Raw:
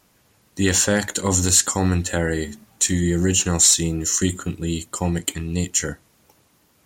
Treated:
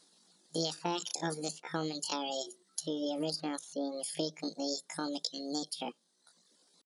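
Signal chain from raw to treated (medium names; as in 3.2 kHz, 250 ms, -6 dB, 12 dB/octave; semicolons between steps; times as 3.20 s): resonant high shelf 1.9 kHz +7.5 dB, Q 3; reverb removal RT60 0.83 s; low-pass that closes with the level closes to 850 Hz, closed at -7 dBFS; pitch shift +9 st; compression, threshold -22 dBFS, peak gain reduction 9.5 dB; FFT band-pass 160–11000 Hz; trim -8 dB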